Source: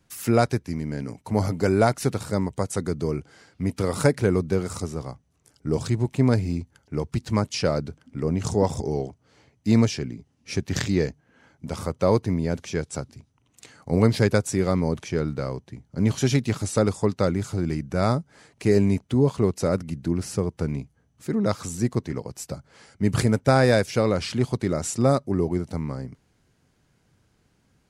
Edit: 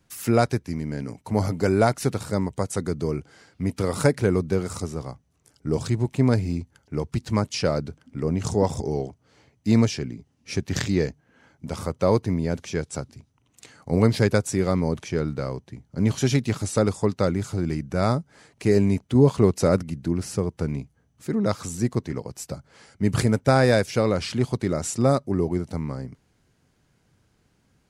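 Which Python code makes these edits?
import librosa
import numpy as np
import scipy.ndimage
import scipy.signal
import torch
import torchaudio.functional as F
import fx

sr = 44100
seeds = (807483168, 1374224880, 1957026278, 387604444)

y = fx.edit(x, sr, fx.clip_gain(start_s=19.15, length_s=0.68, db=3.5), tone=tone)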